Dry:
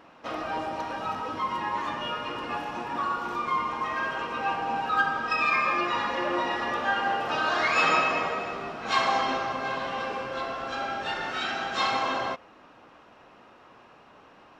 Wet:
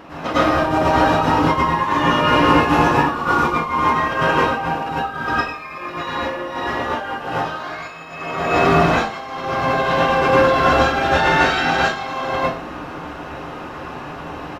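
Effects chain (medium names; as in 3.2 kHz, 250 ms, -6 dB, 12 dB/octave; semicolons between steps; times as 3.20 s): bass shelf 290 Hz +8 dB; hum notches 60/120/180/240 Hz; compressor with a negative ratio -33 dBFS, ratio -0.5; companded quantiser 8-bit; reverberation RT60 0.45 s, pre-delay 93 ms, DRR -9.5 dB; resampled via 32 kHz; trim +5 dB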